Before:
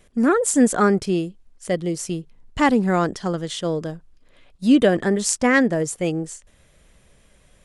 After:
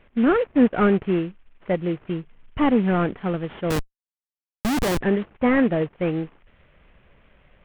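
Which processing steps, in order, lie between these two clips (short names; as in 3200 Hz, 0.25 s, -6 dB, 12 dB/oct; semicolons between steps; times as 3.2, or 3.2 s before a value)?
CVSD 16 kbps; 3.7–5.01 Schmitt trigger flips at -21.5 dBFS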